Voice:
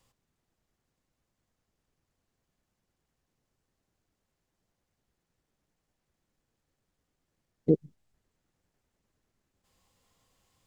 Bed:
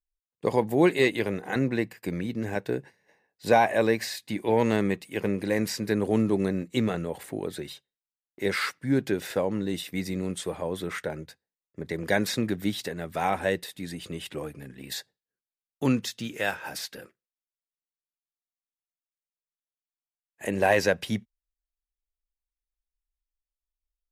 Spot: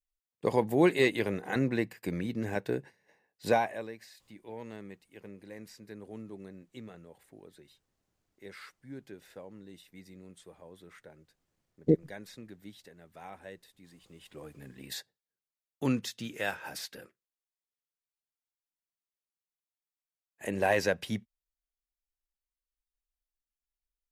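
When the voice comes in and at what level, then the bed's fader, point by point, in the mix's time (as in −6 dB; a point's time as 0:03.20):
4.20 s, −0.5 dB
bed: 0:03.47 −3 dB
0:03.92 −20.5 dB
0:14.05 −20.5 dB
0:14.68 −5 dB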